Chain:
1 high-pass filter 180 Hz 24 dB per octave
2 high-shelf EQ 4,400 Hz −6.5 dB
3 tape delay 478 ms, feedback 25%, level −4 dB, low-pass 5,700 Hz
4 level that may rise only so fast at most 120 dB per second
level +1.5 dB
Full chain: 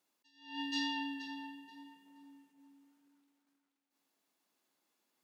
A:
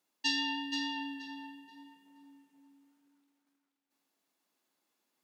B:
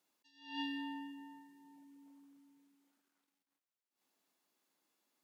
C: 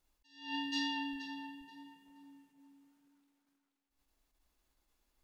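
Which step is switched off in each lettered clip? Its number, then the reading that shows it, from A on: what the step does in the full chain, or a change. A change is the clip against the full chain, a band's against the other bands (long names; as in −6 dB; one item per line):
4, change in crest factor +2.0 dB
3, 8 kHz band −10.0 dB
1, change in momentary loudness spread −5 LU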